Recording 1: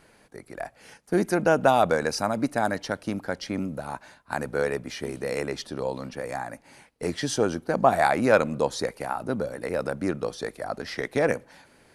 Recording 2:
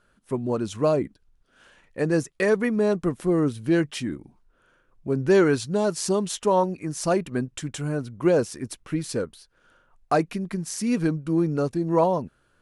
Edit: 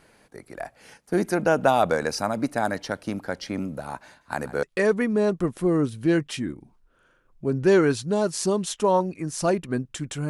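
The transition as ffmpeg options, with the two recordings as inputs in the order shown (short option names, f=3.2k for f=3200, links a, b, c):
-filter_complex "[0:a]asettb=1/sr,asplit=3[a][b][c];[a]atrim=end=4.064[d];[b]atrim=start=4.06:end=4.63,asetpts=PTS-STARTPTS,afade=t=in:d=0.004:c=qsin,afade=t=out:st=0.566:d=0.004:c=qsin,aecho=1:1:147:0.141,atrim=end_sample=25137[e];[c]atrim=start=4.626[f];[d][e]acrossfade=d=0.004:c1=hsin:c2=qsin[g];[g][f]acrossfade=d=0.004:c1=qsin:c2=hsin,apad=whole_dur=10.29,atrim=end=10.29,atrim=end=4.632[h];[1:a]atrim=start=2.258:end=7.92[i];[h][i]acrossfade=d=0.004:c1=hsin:c2=hsin"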